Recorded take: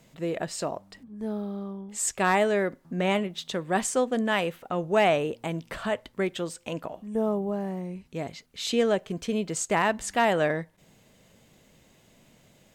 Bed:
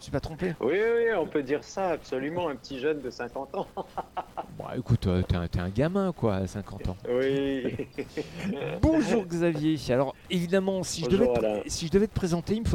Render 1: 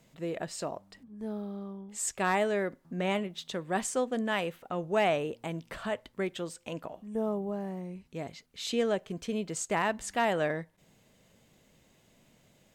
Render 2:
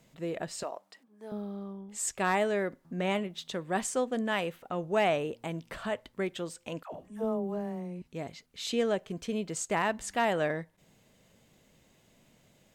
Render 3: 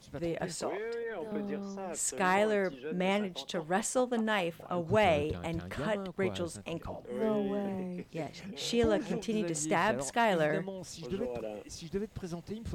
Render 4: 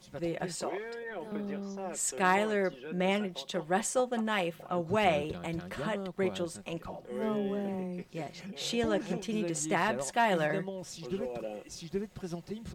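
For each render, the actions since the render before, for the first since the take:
trim -5 dB
0.63–1.32 s: high-pass 480 Hz; 6.83–8.02 s: phase dispersion lows, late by 96 ms, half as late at 510 Hz
add bed -13 dB
bass shelf 170 Hz -4.5 dB; comb 5.5 ms, depth 43%

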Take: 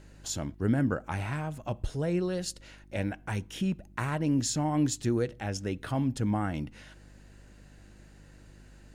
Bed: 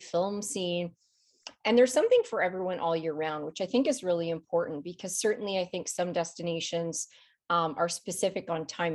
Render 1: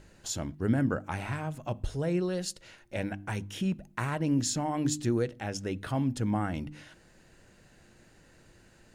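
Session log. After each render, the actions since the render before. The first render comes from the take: de-hum 50 Hz, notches 6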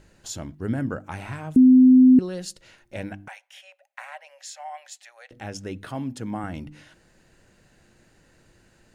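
1.56–2.19 s: bleep 256 Hz -9 dBFS; 3.28–5.31 s: rippled Chebyshev high-pass 540 Hz, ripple 9 dB; 5.85–6.44 s: Bessel high-pass 160 Hz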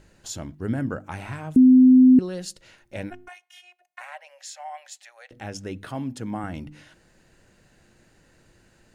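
3.10–4.01 s: robot voice 358 Hz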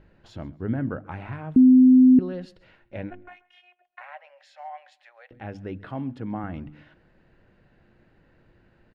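distance through air 390 m; feedback delay 134 ms, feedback 29%, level -23 dB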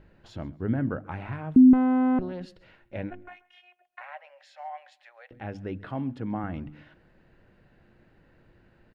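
1.73–2.41 s: valve stage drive 21 dB, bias 0.7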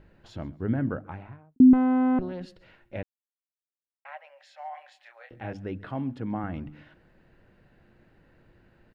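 0.87–1.60 s: studio fade out; 3.03–4.05 s: mute; 4.71–5.53 s: doubling 26 ms -4 dB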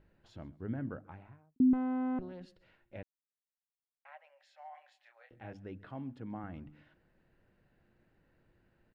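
trim -11 dB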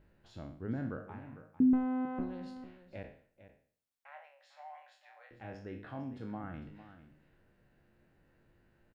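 spectral sustain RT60 0.50 s; delay 451 ms -13.5 dB

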